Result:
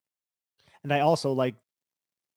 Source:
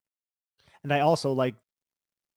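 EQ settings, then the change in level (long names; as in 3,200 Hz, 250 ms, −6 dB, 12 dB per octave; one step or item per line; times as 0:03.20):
high-pass filter 81 Hz
parametric band 1,400 Hz −3.5 dB 0.31 octaves
0.0 dB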